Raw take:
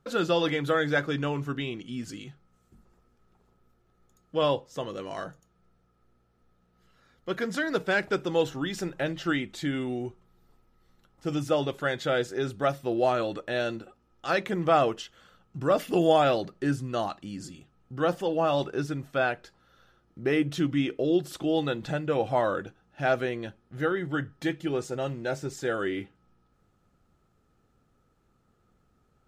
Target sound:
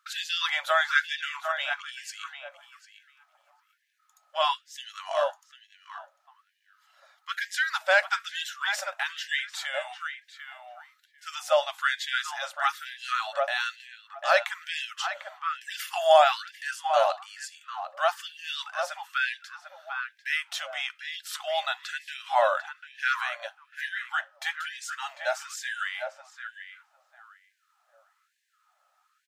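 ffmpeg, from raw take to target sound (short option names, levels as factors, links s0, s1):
-filter_complex "[0:a]asplit=2[s0][s1];[s1]adelay=747,lowpass=f=1400:p=1,volume=0.562,asplit=2[s2][s3];[s3]adelay=747,lowpass=f=1400:p=1,volume=0.24,asplit=2[s4][s5];[s5]adelay=747,lowpass=f=1400:p=1,volume=0.24[s6];[s2][s4][s6]amix=inputs=3:normalize=0[s7];[s0][s7]amix=inputs=2:normalize=0,afftfilt=real='re*gte(b*sr/1024,520*pow(1600/520,0.5+0.5*sin(2*PI*1.1*pts/sr)))':imag='im*gte(b*sr/1024,520*pow(1600/520,0.5+0.5*sin(2*PI*1.1*pts/sr)))':win_size=1024:overlap=0.75,volume=1.88"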